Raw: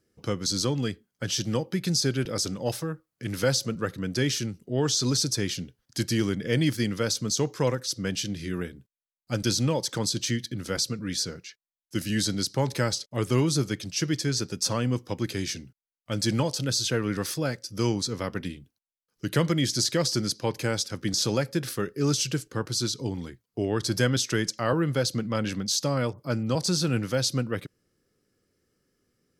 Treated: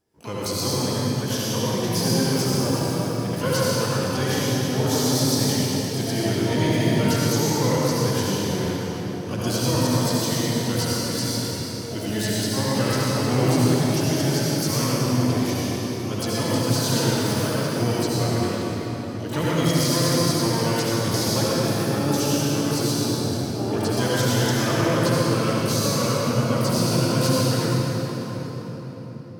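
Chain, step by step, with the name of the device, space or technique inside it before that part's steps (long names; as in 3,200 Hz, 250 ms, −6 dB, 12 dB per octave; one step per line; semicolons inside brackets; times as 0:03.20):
shimmer-style reverb (pitch-shifted copies added +12 semitones −6 dB; convolution reverb RT60 5.1 s, pre-delay 63 ms, DRR −8 dB)
level −4.5 dB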